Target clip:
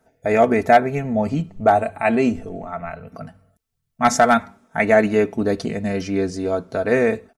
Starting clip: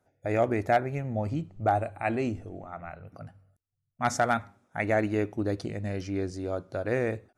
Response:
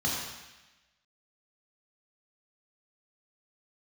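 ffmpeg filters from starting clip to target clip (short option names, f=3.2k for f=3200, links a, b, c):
-af "aecho=1:1:4.5:0.68,volume=9dB"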